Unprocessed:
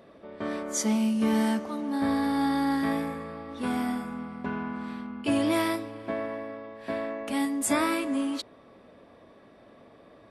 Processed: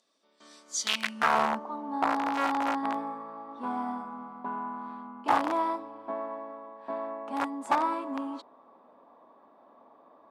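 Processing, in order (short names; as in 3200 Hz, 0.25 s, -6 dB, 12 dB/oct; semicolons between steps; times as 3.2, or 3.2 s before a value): graphic EQ 250/1000/2000/4000/8000 Hz +11/+6/-4/+4/+6 dB; wrapped overs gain 11 dB; band-pass sweep 6400 Hz -> 920 Hz, 0.62–1.39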